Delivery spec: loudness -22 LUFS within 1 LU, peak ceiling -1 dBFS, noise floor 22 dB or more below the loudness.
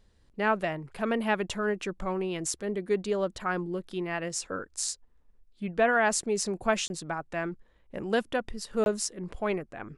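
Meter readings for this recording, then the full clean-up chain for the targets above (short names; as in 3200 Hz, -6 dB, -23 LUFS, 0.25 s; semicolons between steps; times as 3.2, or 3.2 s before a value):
dropouts 2; longest dropout 21 ms; loudness -30.5 LUFS; peak -12.0 dBFS; loudness target -22.0 LUFS
-> interpolate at 6.88/8.84, 21 ms; gain +8.5 dB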